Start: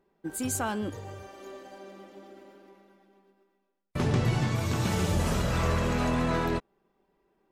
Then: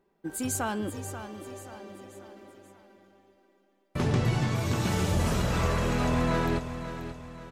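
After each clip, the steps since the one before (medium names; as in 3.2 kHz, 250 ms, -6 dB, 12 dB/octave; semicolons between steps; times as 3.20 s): feedback delay 534 ms, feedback 43%, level -11 dB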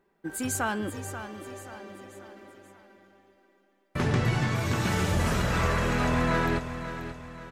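peaking EQ 1.7 kHz +6 dB 1.1 oct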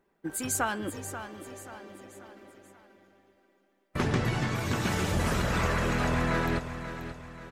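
harmonic-percussive split harmonic -7 dB; trim +2 dB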